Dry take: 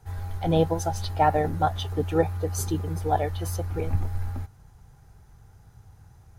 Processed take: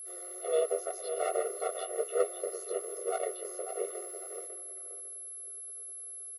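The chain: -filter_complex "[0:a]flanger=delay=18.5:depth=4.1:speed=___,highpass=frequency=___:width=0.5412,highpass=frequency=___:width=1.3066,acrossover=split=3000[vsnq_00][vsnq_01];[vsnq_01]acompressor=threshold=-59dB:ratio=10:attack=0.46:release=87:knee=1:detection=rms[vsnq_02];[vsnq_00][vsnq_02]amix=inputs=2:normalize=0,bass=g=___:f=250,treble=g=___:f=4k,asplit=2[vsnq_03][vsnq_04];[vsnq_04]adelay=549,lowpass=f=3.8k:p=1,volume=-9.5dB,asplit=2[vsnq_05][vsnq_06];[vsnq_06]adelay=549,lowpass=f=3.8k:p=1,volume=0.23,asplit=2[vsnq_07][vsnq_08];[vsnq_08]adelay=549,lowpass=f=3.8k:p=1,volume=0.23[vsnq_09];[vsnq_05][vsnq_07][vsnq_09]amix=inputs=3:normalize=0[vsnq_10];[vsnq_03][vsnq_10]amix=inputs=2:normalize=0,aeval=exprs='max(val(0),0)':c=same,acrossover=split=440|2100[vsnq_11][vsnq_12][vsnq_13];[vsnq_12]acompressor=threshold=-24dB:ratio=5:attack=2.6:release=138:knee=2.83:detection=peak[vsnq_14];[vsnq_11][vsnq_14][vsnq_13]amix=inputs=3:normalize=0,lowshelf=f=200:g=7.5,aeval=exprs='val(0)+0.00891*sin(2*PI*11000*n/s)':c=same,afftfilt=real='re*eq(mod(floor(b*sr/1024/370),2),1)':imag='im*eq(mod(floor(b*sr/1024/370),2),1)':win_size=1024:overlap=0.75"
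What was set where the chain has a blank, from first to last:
1.9, 74, 74, 14, 12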